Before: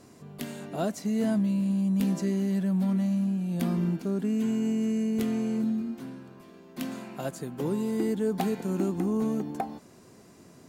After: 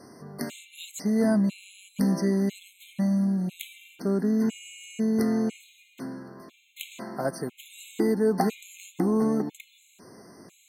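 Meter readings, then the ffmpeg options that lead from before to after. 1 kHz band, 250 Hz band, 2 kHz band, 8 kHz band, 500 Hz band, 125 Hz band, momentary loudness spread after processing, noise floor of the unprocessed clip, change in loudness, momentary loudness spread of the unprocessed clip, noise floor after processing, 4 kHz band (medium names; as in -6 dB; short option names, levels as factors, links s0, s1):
+2.5 dB, +0.5 dB, +4.0 dB, +3.5 dB, +3.0 dB, -1.5 dB, 18 LU, -53 dBFS, +2.0 dB, 11 LU, -61 dBFS, +3.0 dB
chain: -af "lowshelf=f=130:g=-11.5,afftfilt=real='re*gt(sin(2*PI*1*pts/sr)*(1-2*mod(floor(b*sr/1024/2100),2)),0)':imag='im*gt(sin(2*PI*1*pts/sr)*(1-2*mod(floor(b*sr/1024/2100),2)),0)':win_size=1024:overlap=0.75,volume=2.11"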